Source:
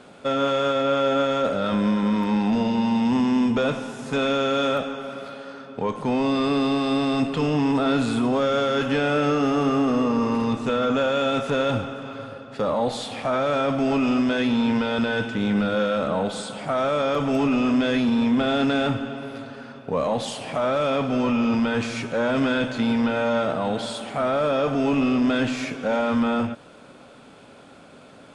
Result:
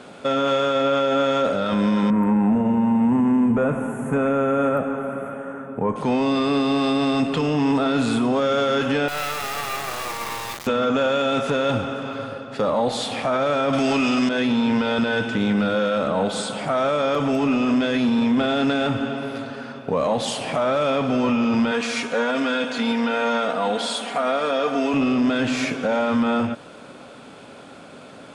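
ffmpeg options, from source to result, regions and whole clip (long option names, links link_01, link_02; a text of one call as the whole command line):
ffmpeg -i in.wav -filter_complex "[0:a]asettb=1/sr,asplit=3[link_01][link_02][link_03];[link_01]atrim=end=2.104[link_04];[link_02]atrim=start=2.1:end=5.96,asetpts=PTS-STARTPTS,afade=type=in:duration=0.004:curve=qsin,afade=type=out:start_time=3.856:duration=0.004:curve=qsin,asuperstop=centerf=4500:order=4:qfactor=0.53,bass=frequency=250:gain=5,treble=frequency=4000:gain=4[link_05];[link_03]atrim=start=5.956[link_06];[link_04][link_05]acrossfade=duration=0.004:curve1=hsin:curve2=qsin[link_07];[link_07][link_06]acrossfade=duration=0.004:curve1=qsin:curve2=hsin,asettb=1/sr,asplit=3[link_08][link_09][link_10];[link_08]atrim=end=9.084[link_11];[link_09]atrim=start=9.08:end=10.67,asetpts=PTS-STARTPTS,afade=type=in:duration=0.004:curve=qsin,afade=type=out:start_time=1.586:duration=0.004:curve=qsin,highpass=frequency=640:width=0.5412,highpass=frequency=640:width=1.3066,acrusher=bits=3:dc=4:mix=0:aa=0.000001[link_12];[link_10]atrim=start=10.666[link_13];[link_11][link_12]acrossfade=duration=0.004:curve1=hsin:curve2=qsin[link_14];[link_14][link_13]acrossfade=duration=0.004:curve1=qsin:curve2=hsin,asettb=1/sr,asplit=3[link_15][link_16][link_17];[link_15]atrim=end=13.734[link_18];[link_16]atrim=start=13.73:end=14.29,asetpts=PTS-STARTPTS,afade=type=in:duration=0.004:curve=qsin,afade=type=out:start_time=0.556:duration=0.004:curve=qsin,highshelf=frequency=2000:gain=11,acontrast=68[link_19];[link_17]atrim=start=14.286[link_20];[link_18][link_19]acrossfade=duration=0.004:curve1=hsin:curve2=qsin[link_21];[link_21][link_20]acrossfade=duration=0.004:curve1=qsin:curve2=hsin,asettb=1/sr,asplit=3[link_22][link_23][link_24];[link_22]atrim=end=21.714[link_25];[link_23]atrim=start=21.71:end=24.94,asetpts=PTS-STARTPTS,afade=type=in:duration=0.004:curve=qsin,afade=type=out:start_time=3.226:duration=0.004:curve=qsin,highpass=frequency=500:poles=1,aecho=1:1:4.2:0.59,atrim=end_sample=142443[link_26];[link_24]atrim=start=24.936[link_27];[link_25][link_26]acrossfade=duration=0.004:curve1=hsin:curve2=qsin[link_28];[link_28][link_27]acrossfade=duration=0.004:curve1=qsin:curve2=hsin,lowshelf=frequency=64:gain=-9,alimiter=limit=-18.5dB:level=0:latency=1:release=141,volume=5.5dB" out.wav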